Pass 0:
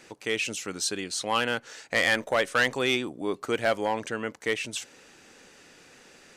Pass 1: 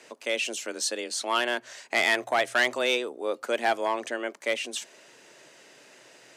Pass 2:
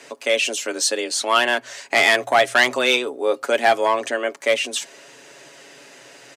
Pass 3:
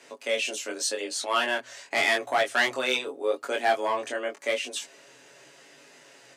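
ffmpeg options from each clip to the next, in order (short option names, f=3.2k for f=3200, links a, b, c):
-af "afreqshift=120,lowshelf=f=62:g=6.5"
-af "aecho=1:1:7.2:0.46,volume=7.5dB"
-af "flanger=delay=19.5:depth=3.7:speed=0.85,volume=-5dB"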